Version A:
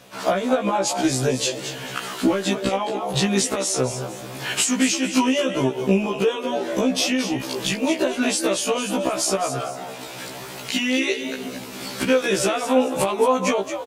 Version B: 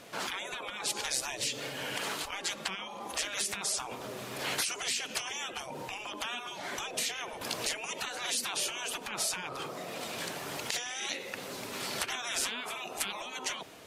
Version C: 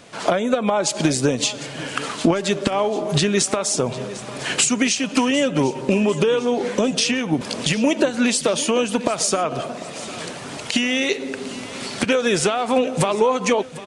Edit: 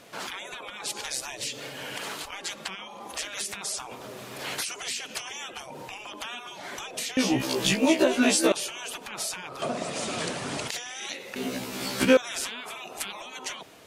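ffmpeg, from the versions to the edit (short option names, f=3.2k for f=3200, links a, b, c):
-filter_complex "[0:a]asplit=2[a][b];[1:a]asplit=4[c][d][e][f];[c]atrim=end=7.172[g];[a]atrim=start=7.168:end=8.522[h];[d]atrim=start=8.518:end=9.622[i];[2:a]atrim=start=9.618:end=10.682[j];[e]atrim=start=10.678:end=11.362[k];[b]atrim=start=11.358:end=12.172[l];[f]atrim=start=12.168[m];[g][h]acrossfade=d=0.004:c1=hsin:c2=hsin[n];[n][i]acrossfade=d=0.004:c1=hsin:c2=hsin[o];[o][j]acrossfade=d=0.004:c1=hsin:c2=hsin[p];[p][k]acrossfade=d=0.004:c1=hsin:c2=hsin[q];[q][l]acrossfade=d=0.004:c1=hsin:c2=hsin[r];[r][m]acrossfade=d=0.004:c1=hsin:c2=hsin"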